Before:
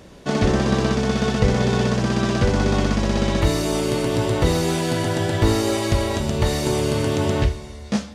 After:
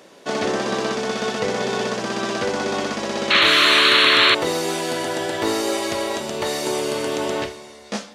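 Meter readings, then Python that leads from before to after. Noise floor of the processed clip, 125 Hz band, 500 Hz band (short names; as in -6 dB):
-44 dBFS, -16.5 dB, -0.5 dB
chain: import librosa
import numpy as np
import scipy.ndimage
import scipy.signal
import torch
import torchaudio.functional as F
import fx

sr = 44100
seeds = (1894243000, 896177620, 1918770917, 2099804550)

y = scipy.signal.sosfilt(scipy.signal.butter(2, 360.0, 'highpass', fs=sr, output='sos'), x)
y = fx.spec_paint(y, sr, seeds[0], shape='noise', start_s=3.3, length_s=1.05, low_hz=1000.0, high_hz=4400.0, level_db=-16.0)
y = F.gain(torch.from_numpy(y), 1.0).numpy()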